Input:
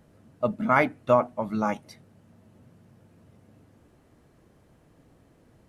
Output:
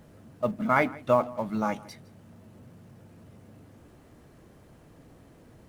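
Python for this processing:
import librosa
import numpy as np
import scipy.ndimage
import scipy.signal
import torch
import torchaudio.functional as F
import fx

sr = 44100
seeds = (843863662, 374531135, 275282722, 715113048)

p1 = fx.law_mismatch(x, sr, coded='mu')
p2 = p1 + fx.echo_single(p1, sr, ms=162, db=-21.5, dry=0)
y = F.gain(torch.from_numpy(p2), -2.5).numpy()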